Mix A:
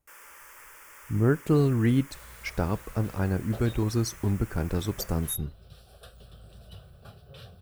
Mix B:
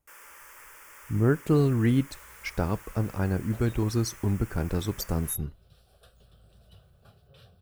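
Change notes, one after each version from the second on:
second sound -8.0 dB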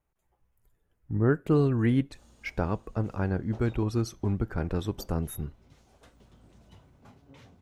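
first sound: muted; second sound: remove static phaser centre 1.4 kHz, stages 8; master: add tone controls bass -2 dB, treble -10 dB

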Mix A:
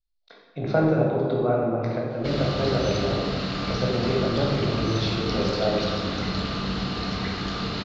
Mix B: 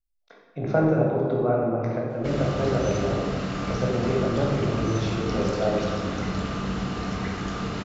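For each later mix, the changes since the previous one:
master: remove resonant low-pass 4.3 kHz, resonance Q 4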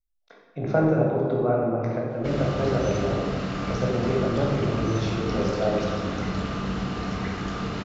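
background: add low-pass 6.7 kHz 12 dB/octave

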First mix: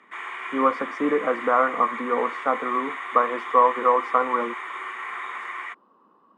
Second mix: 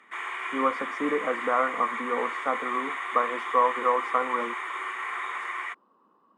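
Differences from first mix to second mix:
speech -5.0 dB; master: add treble shelf 8.4 kHz +9.5 dB

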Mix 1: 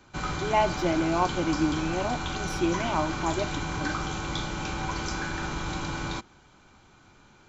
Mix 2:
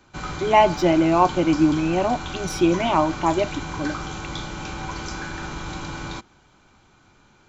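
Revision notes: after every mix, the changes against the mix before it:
speech +8.5 dB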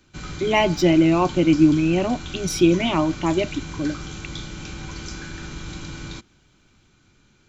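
speech +5.5 dB; master: add peaking EQ 850 Hz -12.5 dB 1.5 oct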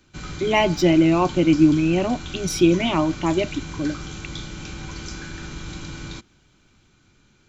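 no change

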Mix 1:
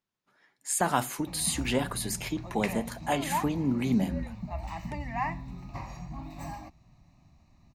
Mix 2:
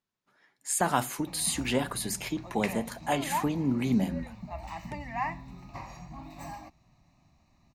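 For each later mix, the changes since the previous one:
background: add bass shelf 220 Hz -7 dB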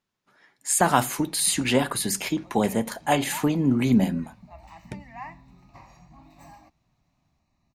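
speech +6.5 dB; background -7.0 dB

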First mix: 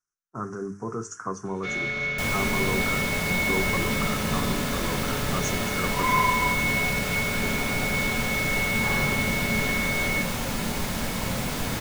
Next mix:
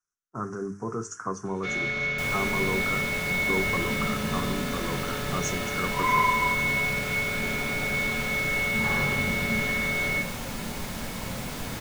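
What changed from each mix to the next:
second sound -5.5 dB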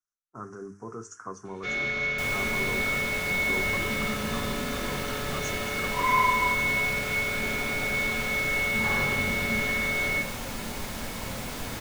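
speech -6.5 dB; master: add peaking EQ 160 Hz -5.5 dB 0.71 oct

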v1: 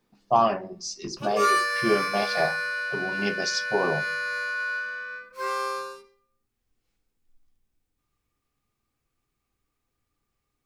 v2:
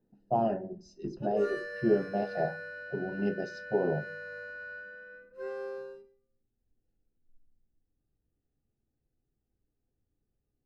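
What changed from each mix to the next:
master: add boxcar filter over 39 samples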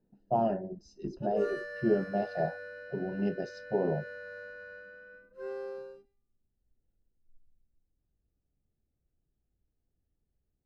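reverb: off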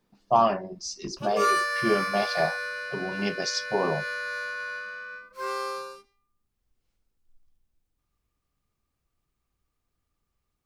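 master: remove boxcar filter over 39 samples

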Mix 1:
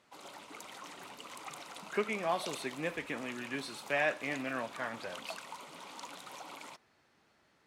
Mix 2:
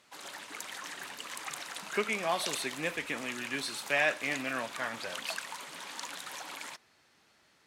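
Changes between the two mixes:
background: add peaking EQ 1.7 kHz +13.5 dB 0.25 oct; master: add treble shelf 2.1 kHz +9.5 dB

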